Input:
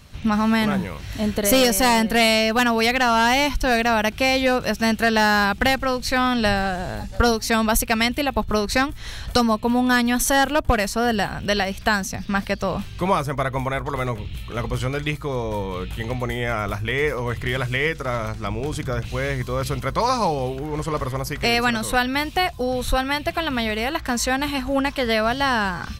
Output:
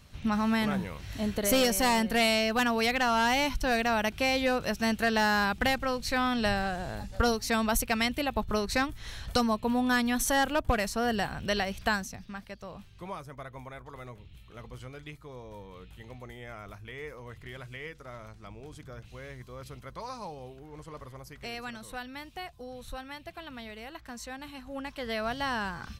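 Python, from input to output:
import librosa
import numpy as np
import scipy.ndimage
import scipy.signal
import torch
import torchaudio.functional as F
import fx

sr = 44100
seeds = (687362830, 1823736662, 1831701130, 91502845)

y = fx.gain(x, sr, db=fx.line((11.92, -8.0), (12.38, -19.5), (24.58, -19.5), (25.29, -11.0)))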